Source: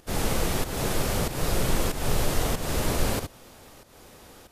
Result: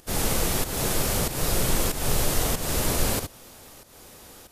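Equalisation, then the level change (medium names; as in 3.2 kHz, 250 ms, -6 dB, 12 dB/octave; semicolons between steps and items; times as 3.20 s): treble shelf 5 kHz +8 dB; 0.0 dB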